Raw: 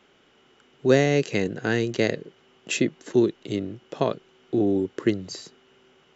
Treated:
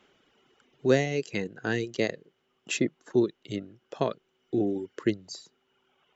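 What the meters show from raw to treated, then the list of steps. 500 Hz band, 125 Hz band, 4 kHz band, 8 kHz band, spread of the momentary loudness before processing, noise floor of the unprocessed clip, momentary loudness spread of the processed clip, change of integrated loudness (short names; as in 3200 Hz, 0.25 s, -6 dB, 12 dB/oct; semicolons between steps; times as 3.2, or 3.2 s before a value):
-5.0 dB, -6.0 dB, -4.5 dB, n/a, 13 LU, -60 dBFS, 15 LU, -5.0 dB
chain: reverb removal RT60 1.6 s; gain -3.5 dB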